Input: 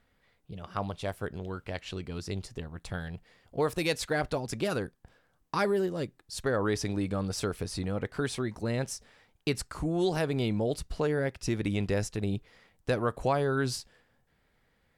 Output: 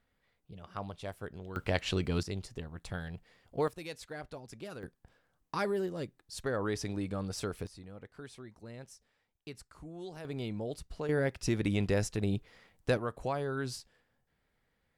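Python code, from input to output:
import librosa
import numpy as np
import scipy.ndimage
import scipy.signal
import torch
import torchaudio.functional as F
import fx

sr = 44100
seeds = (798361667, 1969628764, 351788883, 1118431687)

y = fx.gain(x, sr, db=fx.steps((0.0, -7.0), (1.56, 6.0), (2.23, -3.0), (3.68, -14.0), (4.83, -5.0), (7.67, -16.5), (10.25, -8.5), (11.09, -0.5), (12.97, -7.0)))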